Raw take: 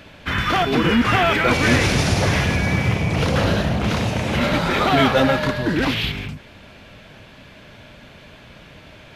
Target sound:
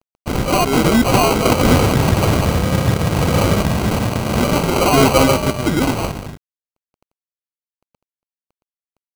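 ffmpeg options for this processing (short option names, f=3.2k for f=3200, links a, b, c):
-af "acrusher=samples=25:mix=1:aa=0.000001,aeval=exprs='sgn(val(0))*max(abs(val(0))-0.02,0)':c=same,volume=4.5dB"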